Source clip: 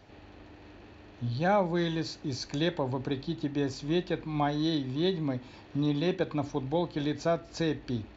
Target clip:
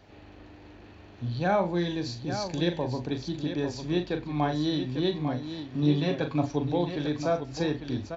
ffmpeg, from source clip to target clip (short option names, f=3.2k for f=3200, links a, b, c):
-filter_complex "[0:a]asettb=1/sr,asplit=3[a][b][c];[a]atrim=end=1.754[d];[b]atrim=start=1.75:end=3.12,asetpts=PTS-STARTPTS,afade=t=in:d=0.004:c=qsin,afade=t=out:st=1.366:d=0.004:c=qsin,equalizer=f=1.3k:t=o:w=0.44:g=-8.5[e];[c]atrim=start=3.116[f];[d][e]acrossfade=d=0.004:c1=hsin:c2=qsin[g];[g][f]acrossfade=d=0.004:c1=qsin:c2=hsin,asettb=1/sr,asplit=3[h][i][j];[h]atrim=end=5.824[k];[i]atrim=start=5.82:end=6.7,asetpts=PTS-STARTPTS,afade=t=in:d=0.004:c=qsin,afade=t=out:st=0.876:d=0.004:c=qsin,aecho=1:1:7.2:0.7,atrim=end_sample=38808[l];[j]atrim=start=6.696[m];[k][l]acrossfade=d=0.004:c1=hsin:c2=qsin[n];[n][m]acrossfade=d=0.004:c1=qsin:c2=hsin,aecho=1:1:40|849:0.376|0.376"